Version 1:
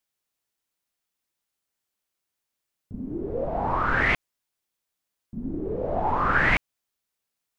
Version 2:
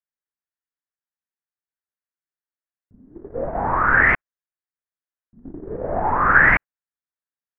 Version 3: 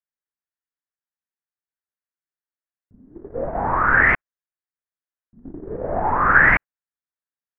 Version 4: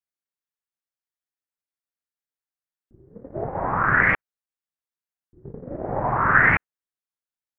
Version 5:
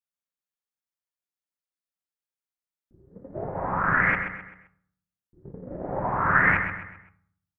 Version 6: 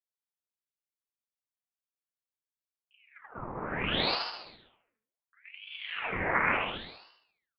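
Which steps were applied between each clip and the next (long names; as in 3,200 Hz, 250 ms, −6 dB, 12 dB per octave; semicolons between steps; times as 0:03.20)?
noise gate −28 dBFS, range −18 dB; high shelf with overshoot 2,600 Hz −14 dB, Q 3; level +2.5 dB
no processing that can be heard
ring modulation 130 Hz
repeating echo 130 ms, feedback 39%, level −8.5 dB; on a send at −9.5 dB: convolution reverb RT60 0.60 s, pre-delay 3 ms; on the sum: level −4.5 dB
on a send: repeating echo 74 ms, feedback 44%, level −5 dB; on the sum: ring modulator whose carrier an LFO sweeps 1,600 Hz, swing 80%, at 0.7 Hz; level −5.5 dB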